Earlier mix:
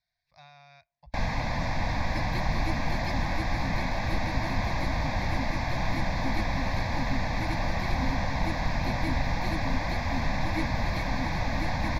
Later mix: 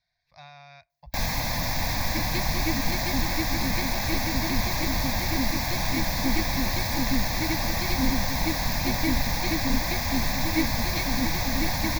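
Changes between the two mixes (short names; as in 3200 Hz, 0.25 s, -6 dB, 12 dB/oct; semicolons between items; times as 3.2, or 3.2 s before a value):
speech +5.5 dB; first sound: remove Bessel low-pass 2300 Hz, order 2; second sound +8.0 dB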